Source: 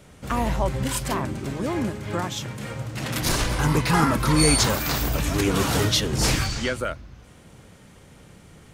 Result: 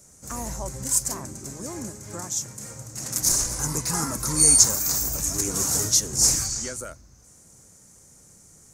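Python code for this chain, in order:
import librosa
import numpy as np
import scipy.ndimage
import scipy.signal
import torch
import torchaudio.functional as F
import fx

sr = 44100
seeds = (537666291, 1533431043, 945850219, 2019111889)

y = fx.high_shelf_res(x, sr, hz=4600.0, db=13.5, q=3.0)
y = F.gain(torch.from_numpy(y), -9.5).numpy()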